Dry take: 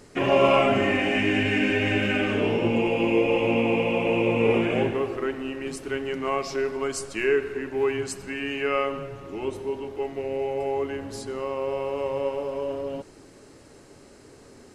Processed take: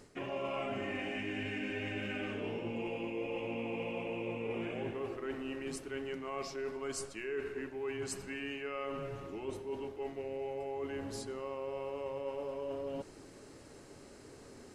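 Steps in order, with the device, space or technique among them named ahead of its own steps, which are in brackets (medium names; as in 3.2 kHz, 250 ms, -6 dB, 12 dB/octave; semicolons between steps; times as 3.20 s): compression on the reversed sound (reverse; compression 5:1, threshold -33 dBFS, peak gain reduction 16.5 dB; reverse); trim -4 dB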